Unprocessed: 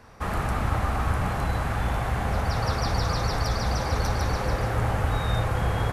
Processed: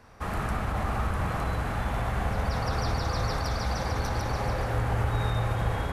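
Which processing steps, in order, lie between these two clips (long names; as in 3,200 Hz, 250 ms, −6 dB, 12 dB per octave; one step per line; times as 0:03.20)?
brickwall limiter −17 dBFS, peak gain reduction 5 dB
spring reverb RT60 3.2 s, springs 45/52 ms, chirp 20 ms, DRR 3.5 dB
level −3.5 dB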